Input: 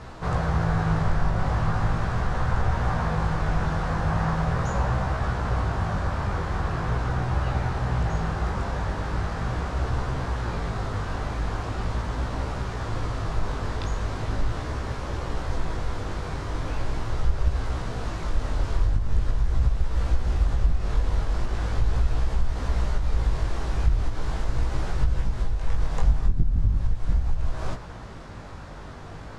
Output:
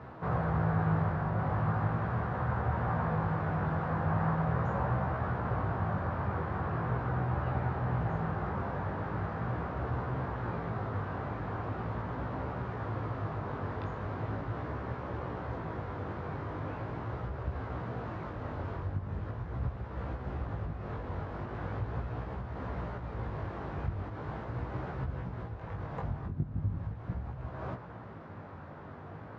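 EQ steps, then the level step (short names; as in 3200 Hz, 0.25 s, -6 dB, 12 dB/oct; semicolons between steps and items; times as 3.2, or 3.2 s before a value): HPF 84 Hz 24 dB/oct; LPF 1700 Hz 12 dB/oct; -4.0 dB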